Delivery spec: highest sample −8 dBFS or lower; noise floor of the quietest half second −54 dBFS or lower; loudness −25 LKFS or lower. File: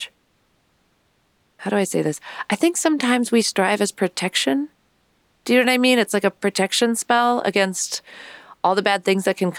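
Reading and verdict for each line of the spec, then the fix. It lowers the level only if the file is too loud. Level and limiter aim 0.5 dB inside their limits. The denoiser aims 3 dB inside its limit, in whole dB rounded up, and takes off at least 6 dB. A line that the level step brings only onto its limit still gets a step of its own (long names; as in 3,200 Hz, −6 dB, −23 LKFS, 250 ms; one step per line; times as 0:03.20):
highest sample −3.5 dBFS: out of spec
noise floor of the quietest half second −64 dBFS: in spec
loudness −19.5 LKFS: out of spec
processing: level −6 dB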